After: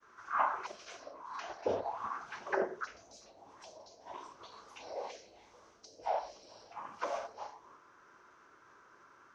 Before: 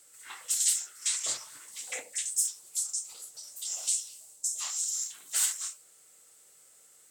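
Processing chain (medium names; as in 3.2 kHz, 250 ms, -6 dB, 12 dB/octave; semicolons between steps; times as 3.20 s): expander -54 dBFS; tape speed -24%; touch-sensitive low-pass 600–1400 Hz down, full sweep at -29.5 dBFS; trim +9 dB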